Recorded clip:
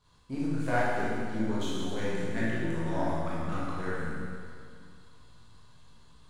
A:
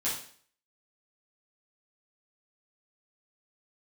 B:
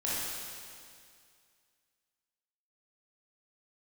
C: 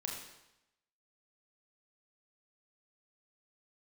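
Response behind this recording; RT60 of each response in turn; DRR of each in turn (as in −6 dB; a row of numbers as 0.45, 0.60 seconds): B; 0.50, 2.2, 0.90 seconds; −9.5, −8.5, −1.5 decibels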